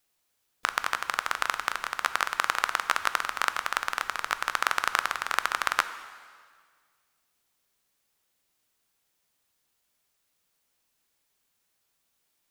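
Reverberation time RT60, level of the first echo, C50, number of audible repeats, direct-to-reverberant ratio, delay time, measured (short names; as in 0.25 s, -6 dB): 1.8 s, none, 12.0 dB, none, 10.5 dB, none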